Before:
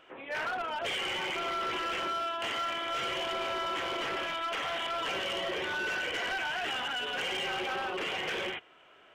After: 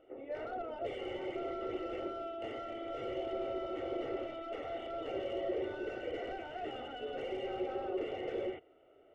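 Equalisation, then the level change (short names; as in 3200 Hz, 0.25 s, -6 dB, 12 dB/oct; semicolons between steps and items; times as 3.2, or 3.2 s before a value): polynomial smoothing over 65 samples; bell 150 Hz +6.5 dB 0.95 oct; fixed phaser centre 420 Hz, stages 4; +2.0 dB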